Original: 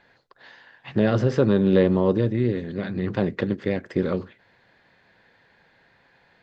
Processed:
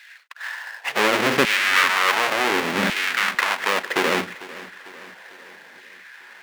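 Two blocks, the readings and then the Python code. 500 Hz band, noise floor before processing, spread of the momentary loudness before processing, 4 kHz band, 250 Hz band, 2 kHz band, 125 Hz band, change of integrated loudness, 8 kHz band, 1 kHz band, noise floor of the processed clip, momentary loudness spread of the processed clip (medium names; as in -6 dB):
-3.0 dB, -61 dBFS, 10 LU, +18.5 dB, -7.0 dB, +17.5 dB, -14.0 dB, +3.0 dB, no reading, +14.0 dB, -46 dBFS, 19 LU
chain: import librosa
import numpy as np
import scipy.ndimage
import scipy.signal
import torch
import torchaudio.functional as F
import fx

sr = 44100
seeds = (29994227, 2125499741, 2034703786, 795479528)

p1 = fx.halfwave_hold(x, sr)
p2 = fx.peak_eq(p1, sr, hz=2100.0, db=13.0, octaves=2.2)
p3 = fx.over_compress(p2, sr, threshold_db=-21.0, ratio=-1.0)
p4 = p2 + F.gain(torch.from_numpy(p3), -1.0).numpy()
p5 = fx.hum_notches(p4, sr, base_hz=60, count=3)
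p6 = fx.filter_lfo_highpass(p5, sr, shape='saw_down', hz=0.69, low_hz=210.0, high_hz=2400.0, q=1.4)
p7 = p6 + fx.echo_feedback(p6, sr, ms=448, feedback_pct=55, wet_db=-18, dry=0)
y = F.gain(torch.from_numpy(p7), -8.0).numpy()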